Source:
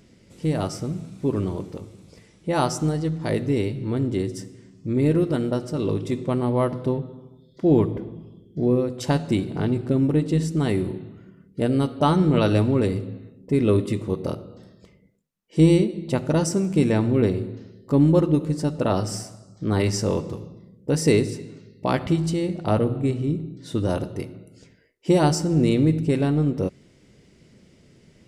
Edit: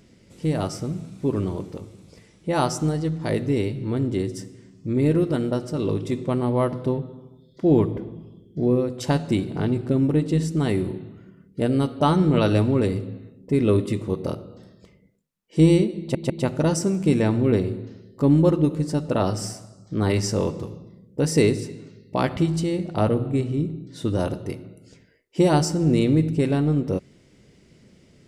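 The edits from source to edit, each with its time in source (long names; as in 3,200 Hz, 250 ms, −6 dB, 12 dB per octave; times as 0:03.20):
0:16.00: stutter 0.15 s, 3 plays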